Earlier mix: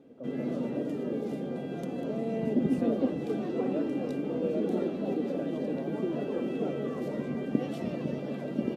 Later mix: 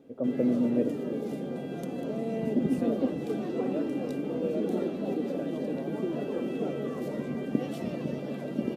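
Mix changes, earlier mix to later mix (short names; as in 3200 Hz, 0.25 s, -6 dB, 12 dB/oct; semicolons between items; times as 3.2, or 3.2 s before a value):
first voice +12.0 dB; master: add high shelf 8000 Hz +8.5 dB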